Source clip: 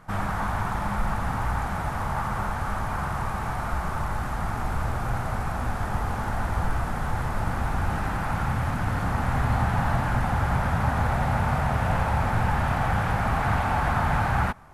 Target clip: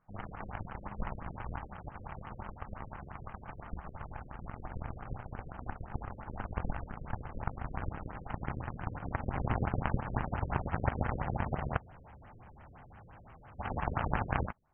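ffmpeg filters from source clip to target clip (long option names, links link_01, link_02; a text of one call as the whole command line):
ffmpeg -i in.wav -filter_complex "[0:a]asplit=3[link_01][link_02][link_03];[link_01]afade=type=out:start_time=11.77:duration=0.02[link_04];[link_02]asoftclip=type=hard:threshold=-29.5dB,afade=type=in:start_time=11.77:duration=0.02,afade=type=out:start_time=13.58:duration=0.02[link_05];[link_03]afade=type=in:start_time=13.58:duration=0.02[link_06];[link_04][link_05][link_06]amix=inputs=3:normalize=0,aeval=exprs='0.299*(cos(1*acos(clip(val(0)/0.299,-1,1)))-cos(1*PI/2))+0.0944*(cos(3*acos(clip(val(0)/0.299,-1,1)))-cos(3*PI/2))':channel_layout=same,afftfilt=real='re*lt(b*sr/1024,540*pow(3300/540,0.5+0.5*sin(2*PI*5.8*pts/sr)))':imag='im*lt(b*sr/1024,540*pow(3300/540,0.5+0.5*sin(2*PI*5.8*pts/sr)))':win_size=1024:overlap=0.75,volume=1.5dB" out.wav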